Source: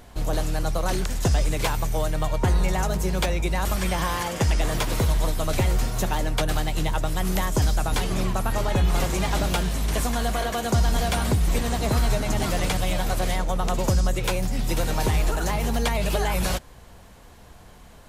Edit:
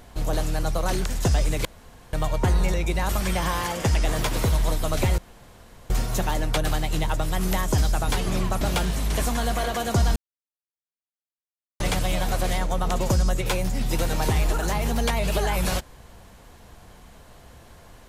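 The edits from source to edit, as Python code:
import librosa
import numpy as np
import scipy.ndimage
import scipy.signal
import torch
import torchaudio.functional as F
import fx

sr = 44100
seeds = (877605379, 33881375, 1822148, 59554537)

y = fx.edit(x, sr, fx.room_tone_fill(start_s=1.65, length_s=0.48),
    fx.cut(start_s=2.74, length_s=0.56),
    fx.insert_room_tone(at_s=5.74, length_s=0.72),
    fx.cut(start_s=8.45, length_s=0.94),
    fx.silence(start_s=10.94, length_s=1.64), tone=tone)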